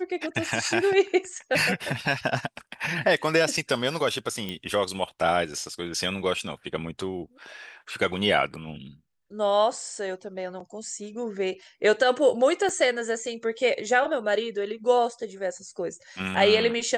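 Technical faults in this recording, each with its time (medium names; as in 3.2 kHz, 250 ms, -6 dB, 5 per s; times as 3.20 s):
4.49 s: pop -18 dBFS
12.69 s: dropout 2.3 ms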